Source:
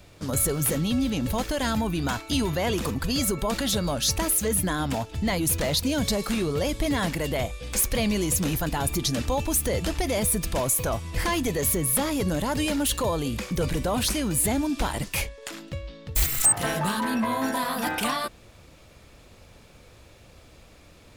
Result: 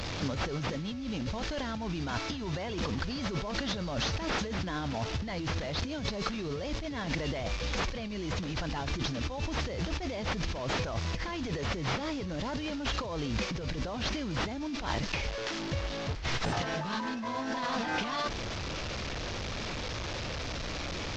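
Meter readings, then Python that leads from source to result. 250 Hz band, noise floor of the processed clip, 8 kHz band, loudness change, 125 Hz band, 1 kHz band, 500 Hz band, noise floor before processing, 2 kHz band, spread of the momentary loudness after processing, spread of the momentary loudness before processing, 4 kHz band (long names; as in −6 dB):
−8.0 dB, −37 dBFS, −19.0 dB, −9.0 dB, −5.5 dB, −5.5 dB, −8.0 dB, −52 dBFS, −3.5 dB, 4 LU, 6 LU, −5.0 dB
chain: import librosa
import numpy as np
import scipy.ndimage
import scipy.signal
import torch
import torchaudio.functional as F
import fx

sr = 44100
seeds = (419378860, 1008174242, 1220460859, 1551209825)

y = fx.delta_mod(x, sr, bps=32000, step_db=-31.5)
y = fx.dmg_crackle(y, sr, seeds[0], per_s=16.0, level_db=-54.0)
y = fx.over_compress(y, sr, threshold_db=-31.0, ratio=-1.0)
y = F.gain(torch.from_numpy(y), -2.5).numpy()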